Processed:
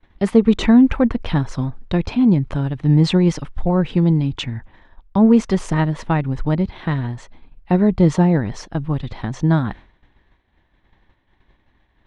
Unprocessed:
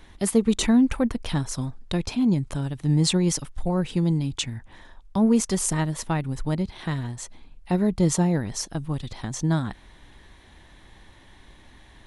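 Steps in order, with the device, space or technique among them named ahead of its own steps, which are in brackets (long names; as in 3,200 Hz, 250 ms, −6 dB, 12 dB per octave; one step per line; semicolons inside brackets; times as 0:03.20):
hearing-loss simulation (low-pass filter 2,700 Hz 12 dB per octave; downward expander −38 dBFS)
level +7 dB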